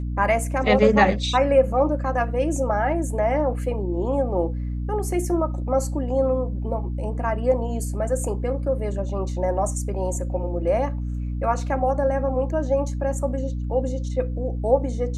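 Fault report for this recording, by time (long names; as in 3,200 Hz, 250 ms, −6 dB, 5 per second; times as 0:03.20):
mains hum 60 Hz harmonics 5 −27 dBFS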